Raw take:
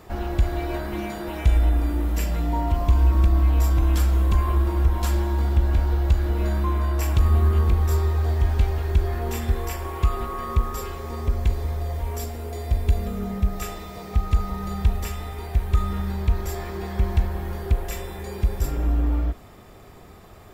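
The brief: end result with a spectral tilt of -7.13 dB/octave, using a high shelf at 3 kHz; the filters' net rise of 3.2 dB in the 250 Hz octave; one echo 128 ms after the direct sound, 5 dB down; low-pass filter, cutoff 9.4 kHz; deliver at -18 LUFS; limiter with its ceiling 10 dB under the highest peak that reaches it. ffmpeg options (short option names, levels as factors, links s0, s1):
-af "lowpass=9400,equalizer=f=250:t=o:g=4.5,highshelf=f=3000:g=3.5,alimiter=limit=0.141:level=0:latency=1,aecho=1:1:128:0.562,volume=2.37"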